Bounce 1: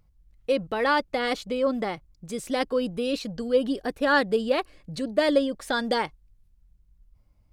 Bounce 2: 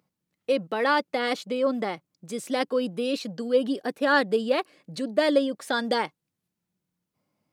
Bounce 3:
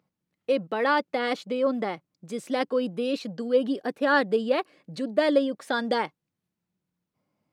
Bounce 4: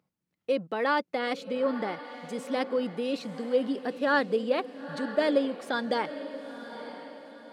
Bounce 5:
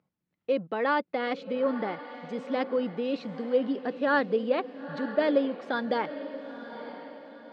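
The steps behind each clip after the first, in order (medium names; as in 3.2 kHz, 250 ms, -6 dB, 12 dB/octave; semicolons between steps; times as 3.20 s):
high-pass 170 Hz 24 dB/octave
treble shelf 4.8 kHz -8.5 dB
echo that smears into a reverb 936 ms, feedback 42%, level -12 dB; trim -3 dB
distance through air 190 m; trim +1 dB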